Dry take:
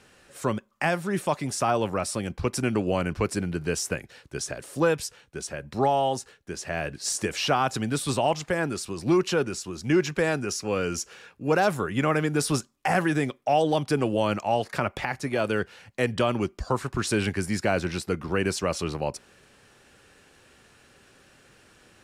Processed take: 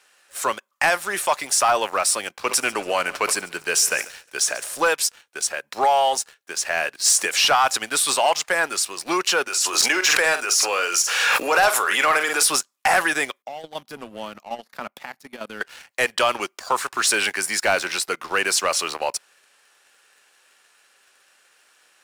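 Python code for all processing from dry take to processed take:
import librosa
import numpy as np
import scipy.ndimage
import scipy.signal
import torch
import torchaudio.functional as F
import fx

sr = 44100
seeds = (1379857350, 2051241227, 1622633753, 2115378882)

y = fx.chain(x, sr, fx.echo_heads(ms=71, heads='first and second', feedback_pct=53, wet_db=-23),
    fx.sustainer(db_per_s=130.0), at=(2.34, 4.88))
y = fx.chain(y, sr, fx.highpass(hz=390.0, slope=12),
    fx.doubler(ms=46.0, db=-11),
    fx.pre_swell(db_per_s=33.0), at=(9.48, 12.43))
y = fx.chain(y, sr, fx.curve_eq(hz=(110.0, 230.0, 320.0, 2400.0, 3700.0, 8900.0, 13000.0), db=(0, 9, -7, -15, -10, -17, -5)),
    fx.level_steps(step_db=9), at=(13.42, 15.61))
y = scipy.signal.sosfilt(scipy.signal.butter(2, 820.0, 'highpass', fs=sr, output='sos'), y)
y = fx.high_shelf(y, sr, hz=8500.0, db=6.5)
y = fx.leveller(y, sr, passes=2)
y = F.gain(torch.from_numpy(y), 3.0).numpy()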